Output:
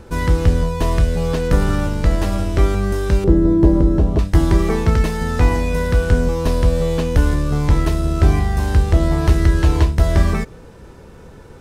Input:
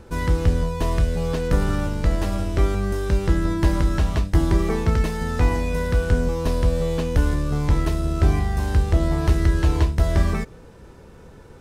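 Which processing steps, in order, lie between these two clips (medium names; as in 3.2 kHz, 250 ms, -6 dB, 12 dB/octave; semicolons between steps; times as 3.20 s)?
3.24–4.19 s: FFT filter 110 Hz 0 dB, 400 Hz +8 dB, 1.8 kHz -15 dB; trim +4.5 dB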